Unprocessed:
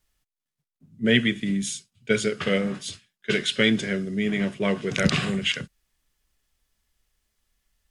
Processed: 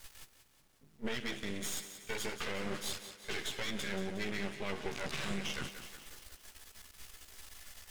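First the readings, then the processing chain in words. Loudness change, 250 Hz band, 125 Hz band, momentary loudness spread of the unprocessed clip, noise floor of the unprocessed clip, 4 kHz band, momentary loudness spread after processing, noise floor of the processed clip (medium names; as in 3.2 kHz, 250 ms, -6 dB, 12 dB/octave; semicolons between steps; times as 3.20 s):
-15.0 dB, -18.0 dB, -17.0 dB, 11 LU, under -85 dBFS, -13.0 dB, 15 LU, -66 dBFS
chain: bass shelf 340 Hz -10 dB; reverse; upward compressor, threshold -24 dBFS; reverse; chorus voices 4, 0.63 Hz, delay 14 ms, depth 1.6 ms; compression, threshold -26 dBFS, peak gain reduction 7.5 dB; added noise pink -70 dBFS; half-wave rectifier; peak limiter -25 dBFS, peak gain reduction 11.5 dB; on a send: thinning echo 181 ms, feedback 55%, high-pass 160 Hz, level -10.5 dB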